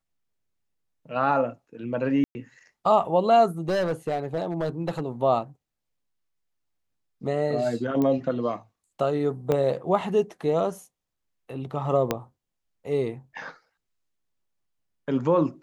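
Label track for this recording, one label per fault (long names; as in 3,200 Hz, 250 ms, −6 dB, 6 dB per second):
2.240000	2.350000	drop-out 110 ms
3.680000	5.010000	clipping −21.5 dBFS
8.020000	8.020000	click −16 dBFS
9.520000	9.520000	click −13 dBFS
12.110000	12.110000	click −9 dBFS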